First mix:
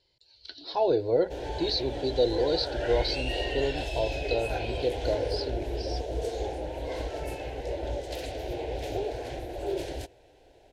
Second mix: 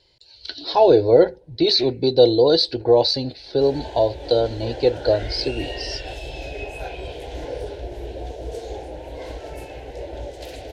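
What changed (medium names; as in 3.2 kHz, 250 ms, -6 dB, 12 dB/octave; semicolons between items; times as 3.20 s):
speech +11.0 dB; background: entry +2.30 s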